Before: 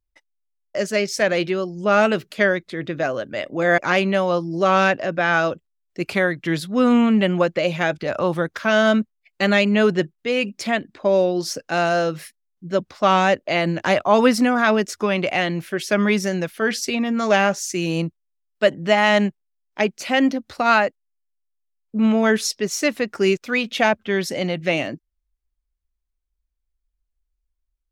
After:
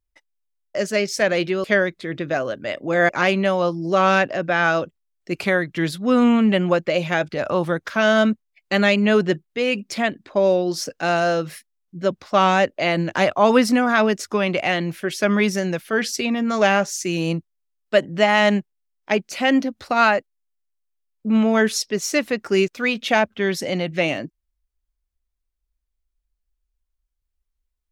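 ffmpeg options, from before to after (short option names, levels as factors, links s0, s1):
-filter_complex "[0:a]asplit=2[s0][s1];[s0]atrim=end=1.642[s2];[s1]atrim=start=2.328[s3];[s2][s3]acrossfade=d=0.004:c1=hsin:c2=hsin"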